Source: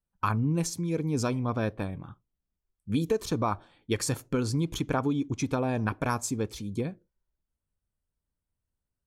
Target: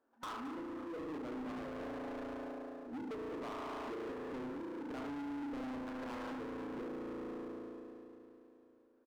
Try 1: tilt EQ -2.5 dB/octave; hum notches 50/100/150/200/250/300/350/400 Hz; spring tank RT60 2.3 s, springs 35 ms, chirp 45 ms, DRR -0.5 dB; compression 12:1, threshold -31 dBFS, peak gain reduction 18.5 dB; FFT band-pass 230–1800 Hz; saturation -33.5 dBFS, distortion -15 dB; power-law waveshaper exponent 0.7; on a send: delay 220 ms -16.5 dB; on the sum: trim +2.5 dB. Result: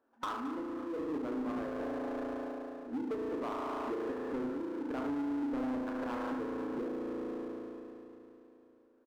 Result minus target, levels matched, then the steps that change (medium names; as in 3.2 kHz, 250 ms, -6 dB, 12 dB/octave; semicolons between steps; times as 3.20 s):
saturation: distortion -8 dB
change: saturation -43 dBFS, distortion -7 dB